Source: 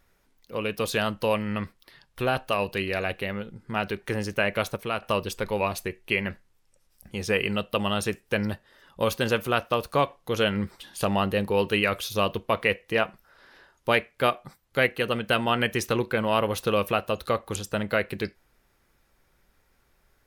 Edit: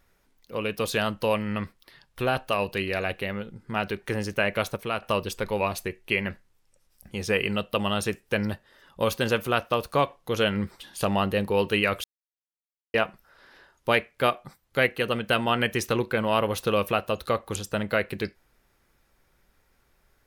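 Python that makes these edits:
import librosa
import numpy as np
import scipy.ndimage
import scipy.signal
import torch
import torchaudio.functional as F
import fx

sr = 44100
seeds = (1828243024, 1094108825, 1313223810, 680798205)

y = fx.edit(x, sr, fx.silence(start_s=12.04, length_s=0.9), tone=tone)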